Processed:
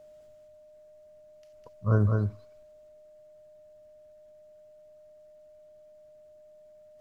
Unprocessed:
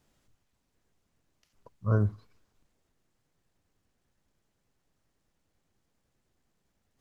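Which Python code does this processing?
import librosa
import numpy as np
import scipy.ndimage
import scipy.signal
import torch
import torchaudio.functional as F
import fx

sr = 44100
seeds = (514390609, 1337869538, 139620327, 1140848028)

y = x + 10.0 ** (-52.0 / 20.0) * np.sin(2.0 * np.pi * 610.0 * np.arange(len(x)) / sr)
y = y + 10.0 ** (-4.0 / 20.0) * np.pad(y, (int(206 * sr / 1000.0), 0))[:len(y)]
y = F.gain(torch.from_numpy(y), 2.0).numpy()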